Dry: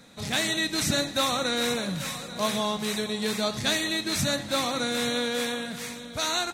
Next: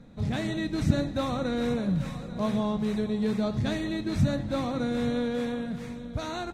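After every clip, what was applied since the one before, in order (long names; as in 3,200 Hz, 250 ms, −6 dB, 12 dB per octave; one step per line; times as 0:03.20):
spectral tilt −4.5 dB per octave
level −5.5 dB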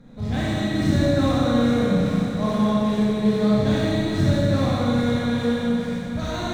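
running median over 3 samples
notch filter 2,600 Hz, Q 20
four-comb reverb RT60 2.5 s, combs from 30 ms, DRR −7 dB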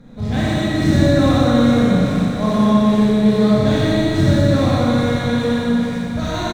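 single-tap delay 123 ms −6 dB
level +4.5 dB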